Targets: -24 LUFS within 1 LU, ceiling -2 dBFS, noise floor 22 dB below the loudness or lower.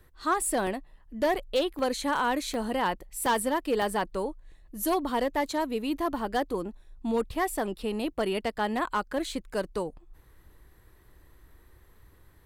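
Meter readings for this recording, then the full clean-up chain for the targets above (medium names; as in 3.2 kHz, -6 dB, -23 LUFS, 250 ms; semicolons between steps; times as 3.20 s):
clipped samples 0.8%; clipping level -19.5 dBFS; dropouts 7; longest dropout 1.6 ms; loudness -29.5 LUFS; peak level -19.5 dBFS; loudness target -24.0 LUFS
-> clip repair -19.5 dBFS; interpolate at 0.67/1.79/2.54/3.26/3.82/5.09/7.35 s, 1.6 ms; trim +5.5 dB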